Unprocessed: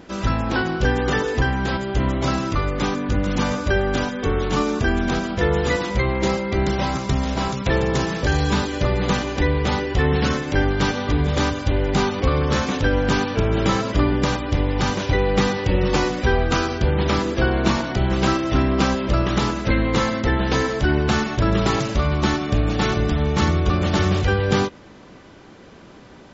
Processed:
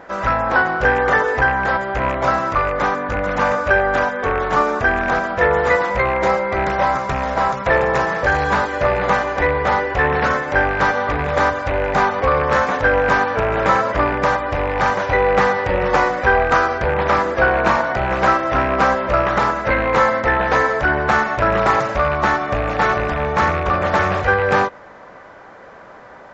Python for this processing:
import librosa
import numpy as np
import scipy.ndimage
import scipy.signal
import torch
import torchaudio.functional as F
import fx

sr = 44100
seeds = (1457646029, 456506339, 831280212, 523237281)

y = fx.rattle_buzz(x, sr, strikes_db=-18.0, level_db=-19.0)
y = fx.band_shelf(y, sr, hz=1000.0, db=15.0, octaves=2.4)
y = fx.doppler_dist(y, sr, depth_ms=0.12)
y = F.gain(torch.from_numpy(y), -5.5).numpy()